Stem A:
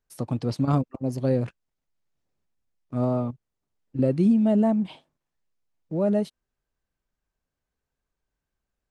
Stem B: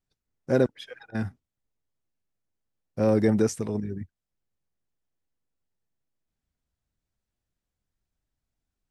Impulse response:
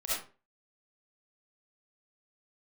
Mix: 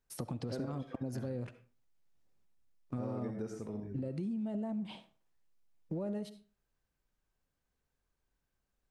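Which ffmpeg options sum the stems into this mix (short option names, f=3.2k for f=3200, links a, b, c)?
-filter_complex "[0:a]bandreject=f=630:w=20,acompressor=threshold=-24dB:ratio=6,alimiter=limit=-23dB:level=0:latency=1,volume=-1dB,asplit=2[a][b];[b]volume=-20dB[c];[1:a]highshelf=f=2.5k:g=-9,volume=-13.5dB,asplit=2[d][e];[e]volume=-7.5dB[f];[2:a]atrim=start_sample=2205[g];[c][f]amix=inputs=2:normalize=0[h];[h][g]afir=irnorm=-1:irlink=0[i];[a][d][i]amix=inputs=3:normalize=0,acompressor=threshold=-35dB:ratio=6"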